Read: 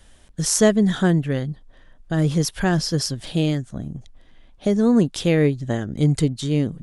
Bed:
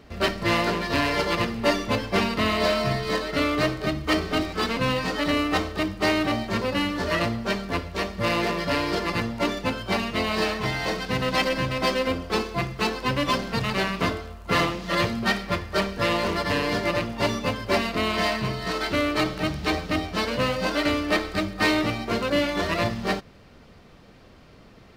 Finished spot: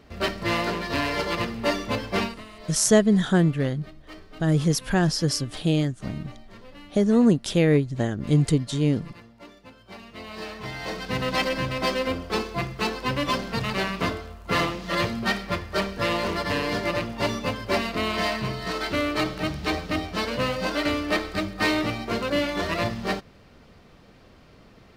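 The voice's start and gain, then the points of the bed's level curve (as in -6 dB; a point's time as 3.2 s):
2.30 s, -1.5 dB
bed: 2.24 s -2.5 dB
2.45 s -21.5 dB
9.7 s -21.5 dB
11.16 s -1.5 dB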